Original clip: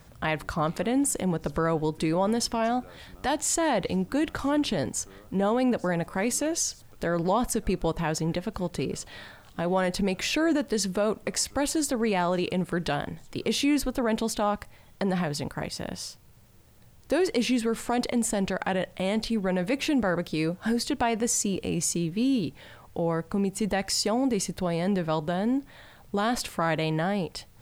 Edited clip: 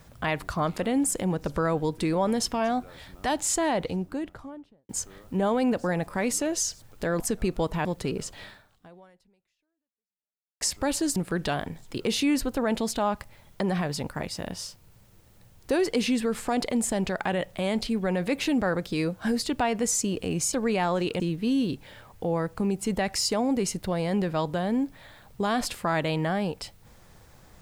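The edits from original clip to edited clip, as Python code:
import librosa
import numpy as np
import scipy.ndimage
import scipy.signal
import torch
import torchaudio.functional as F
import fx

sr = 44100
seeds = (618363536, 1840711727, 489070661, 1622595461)

y = fx.studio_fade_out(x, sr, start_s=3.5, length_s=1.39)
y = fx.edit(y, sr, fx.cut(start_s=7.2, length_s=0.25),
    fx.cut(start_s=8.1, length_s=0.49),
    fx.fade_out_span(start_s=9.17, length_s=2.18, curve='exp'),
    fx.move(start_s=11.9, length_s=0.67, to_s=21.94), tone=tone)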